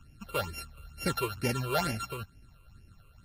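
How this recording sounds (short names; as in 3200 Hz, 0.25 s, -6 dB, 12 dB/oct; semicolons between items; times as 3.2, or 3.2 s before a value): a buzz of ramps at a fixed pitch in blocks of 32 samples; phasing stages 8, 2.2 Hz, lowest notch 220–1200 Hz; Vorbis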